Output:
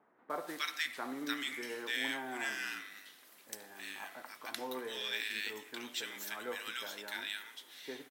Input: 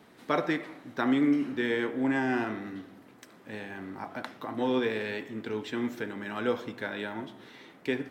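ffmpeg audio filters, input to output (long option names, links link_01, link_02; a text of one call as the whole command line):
ffmpeg -i in.wav -filter_complex "[0:a]aderivative,acrossover=split=1300[link_01][link_02];[link_02]adelay=300[link_03];[link_01][link_03]amix=inputs=2:normalize=0,volume=10.5dB" out.wav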